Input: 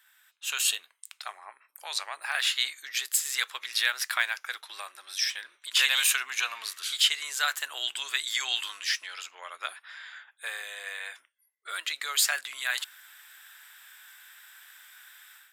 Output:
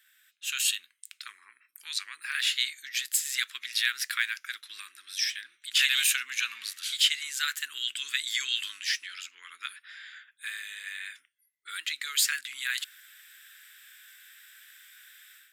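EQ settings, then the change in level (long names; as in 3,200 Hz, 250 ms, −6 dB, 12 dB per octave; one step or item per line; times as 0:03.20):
Chebyshev band-stop filter 250–1,800 Hz, order 2
0.0 dB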